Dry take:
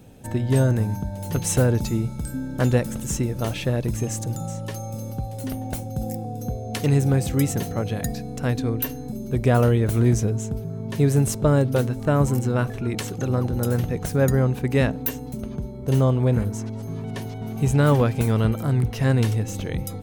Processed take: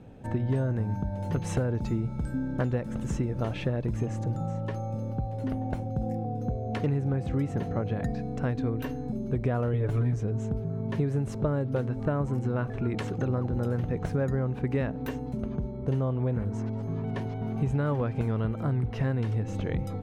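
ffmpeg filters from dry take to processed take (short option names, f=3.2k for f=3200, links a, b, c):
-filter_complex "[0:a]asettb=1/sr,asplit=3[a][b][c];[a]atrim=end=4.064[d];[b]atrim=start=4.06:end=8.19,asetpts=PTS-STARTPTS,afade=t=in:d=0.004:c=qsin,afade=t=out:st=4.126:d=0.004:c=qsin,highshelf=f=3.8k:g=-6[e];[c]atrim=start=8.186[f];[d][e]acrossfade=d=0.004:c1=hsin:c2=qsin[g];[g][f]acrossfade=d=0.004:c1=qsin:c2=hsin,asettb=1/sr,asplit=3[h][i][j];[h]atrim=end=9.734[k];[i]atrim=start=9.73:end=10.23,asetpts=PTS-STARTPTS,afade=t=in:d=0.004:c=qsin,afade=t=out:st=0.496:d=0.004:c=qsin,aecho=1:1:7:0.94,atrim=end_sample=22050[l];[j]atrim=start=10.226[m];[k][l]acrossfade=d=0.004:c1=hsin:c2=qsin[n];[n][m]acrossfade=d=0.004:c1=qsin:c2=hsin,lowpass=1.6k,aemphasis=mode=production:type=75fm,acompressor=threshold=-24dB:ratio=6"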